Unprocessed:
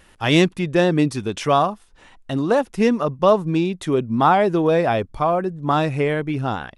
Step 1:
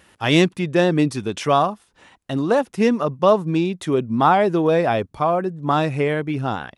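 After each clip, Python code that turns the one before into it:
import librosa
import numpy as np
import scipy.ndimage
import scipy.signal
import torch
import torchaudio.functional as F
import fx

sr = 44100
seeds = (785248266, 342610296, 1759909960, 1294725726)

y = scipy.signal.sosfilt(scipy.signal.butter(2, 85.0, 'highpass', fs=sr, output='sos'), x)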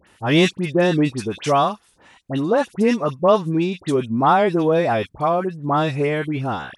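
y = fx.dispersion(x, sr, late='highs', ms=71.0, hz=1800.0)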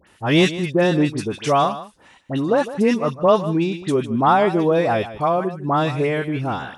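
y = x + 10.0 ** (-14.5 / 20.0) * np.pad(x, (int(154 * sr / 1000.0), 0))[:len(x)]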